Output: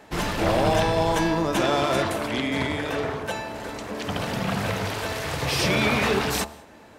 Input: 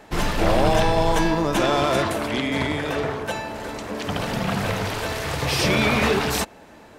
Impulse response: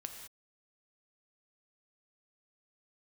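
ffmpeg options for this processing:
-filter_complex "[0:a]highpass=42,bandreject=f=74.43:t=h:w=4,bandreject=f=148.86:t=h:w=4,bandreject=f=223.29:t=h:w=4,bandreject=f=297.72:t=h:w=4,bandreject=f=372.15:t=h:w=4,bandreject=f=446.58:t=h:w=4,bandreject=f=521.01:t=h:w=4,bandreject=f=595.44:t=h:w=4,bandreject=f=669.87:t=h:w=4,bandreject=f=744.3:t=h:w=4,bandreject=f=818.73:t=h:w=4,bandreject=f=893.16:t=h:w=4,bandreject=f=967.59:t=h:w=4,bandreject=f=1042.02:t=h:w=4,bandreject=f=1116.45:t=h:w=4,bandreject=f=1190.88:t=h:w=4,bandreject=f=1265.31:t=h:w=4,bandreject=f=1339.74:t=h:w=4,bandreject=f=1414.17:t=h:w=4,asplit=2[s0][s1];[1:a]atrim=start_sample=2205[s2];[s1][s2]afir=irnorm=-1:irlink=0,volume=0.251[s3];[s0][s3]amix=inputs=2:normalize=0,volume=0.708"

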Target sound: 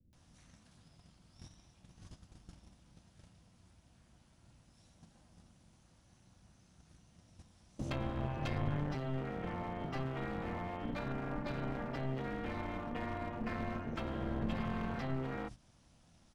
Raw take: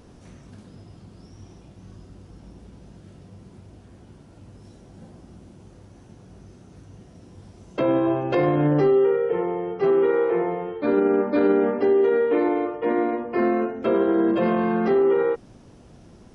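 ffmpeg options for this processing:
-filter_complex "[0:a]highshelf=f=2600:g=8,acrossover=split=260[s0][s1];[s1]adelay=130[s2];[s0][s2]amix=inputs=2:normalize=0,acrossover=split=150|3000[s3][s4][s5];[s4]acompressor=threshold=0.0398:ratio=1.5[s6];[s3][s6][s5]amix=inputs=3:normalize=0,asplit=2[s7][s8];[s8]asetrate=29433,aresample=44100,atempo=1.49831,volume=0.355[s9];[s7][s9]amix=inputs=2:normalize=0,tremolo=f=260:d=0.667,equalizer=f=410:w=2.2:g=-14.5,acrossover=split=200[s10][s11];[s11]acompressor=threshold=0.0112:ratio=6[s12];[s10][s12]amix=inputs=2:normalize=0,bandreject=f=50:t=h:w=6,bandreject=f=100:t=h:w=6,bandreject=f=150:t=h:w=6,bandreject=f=200:t=h:w=6,agate=range=0.224:threshold=0.00447:ratio=16:detection=peak,aeval=exprs='clip(val(0),-1,0.00944)':c=same,volume=1.12"

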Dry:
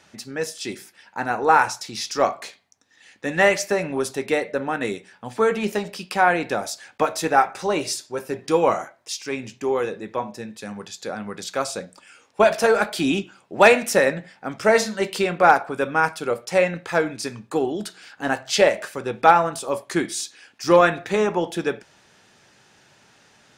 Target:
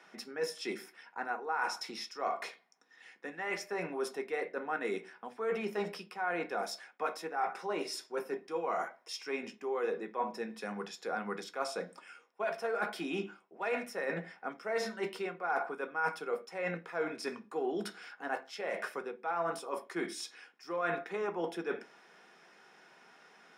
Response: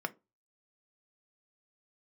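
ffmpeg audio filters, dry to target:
-filter_complex "[0:a]highpass=290,areverse,acompressor=threshold=0.0355:ratio=16,areverse[s0];[1:a]atrim=start_sample=2205[s1];[s0][s1]afir=irnorm=-1:irlink=0,volume=0.473"

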